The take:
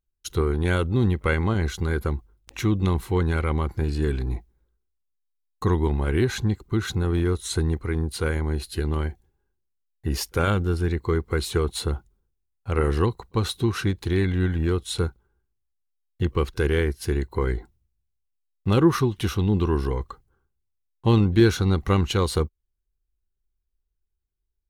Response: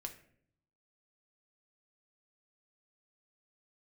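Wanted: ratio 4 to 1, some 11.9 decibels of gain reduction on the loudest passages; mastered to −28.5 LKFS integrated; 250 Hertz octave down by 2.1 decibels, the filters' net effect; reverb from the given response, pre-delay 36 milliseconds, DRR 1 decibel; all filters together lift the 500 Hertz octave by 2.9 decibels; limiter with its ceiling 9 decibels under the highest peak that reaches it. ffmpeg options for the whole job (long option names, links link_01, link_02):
-filter_complex "[0:a]equalizer=frequency=250:width_type=o:gain=-6.5,equalizer=frequency=500:width_type=o:gain=6.5,acompressor=threshold=-27dB:ratio=4,alimiter=level_in=1.5dB:limit=-24dB:level=0:latency=1,volume=-1.5dB,asplit=2[link_01][link_02];[1:a]atrim=start_sample=2205,adelay=36[link_03];[link_02][link_03]afir=irnorm=-1:irlink=0,volume=2dB[link_04];[link_01][link_04]amix=inputs=2:normalize=0,volume=4dB"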